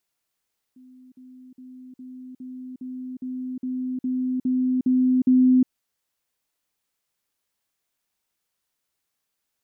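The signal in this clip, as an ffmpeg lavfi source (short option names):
-f lavfi -i "aevalsrc='pow(10,(-46+3*floor(t/0.41))/20)*sin(2*PI*255*t)*clip(min(mod(t,0.41),0.36-mod(t,0.41))/0.005,0,1)':d=4.92:s=44100"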